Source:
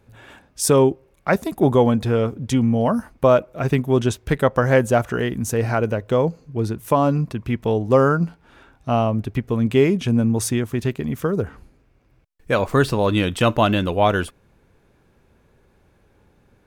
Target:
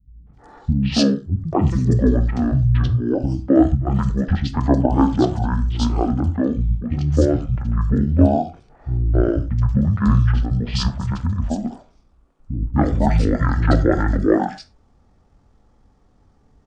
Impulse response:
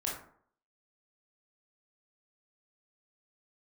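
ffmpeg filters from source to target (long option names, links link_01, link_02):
-filter_complex "[0:a]acrossover=split=370|5100[link_01][link_02][link_03];[link_02]adelay=260[link_04];[link_03]adelay=340[link_05];[link_01][link_04][link_05]amix=inputs=3:normalize=0,asetrate=22696,aresample=44100,atempo=1.94306,asplit=2[link_06][link_07];[1:a]atrim=start_sample=2205,afade=type=out:start_time=0.17:duration=0.01,atrim=end_sample=7938,lowshelf=frequency=190:gain=6.5[link_08];[link_07][link_08]afir=irnorm=-1:irlink=0,volume=-11dB[link_09];[link_06][link_09]amix=inputs=2:normalize=0"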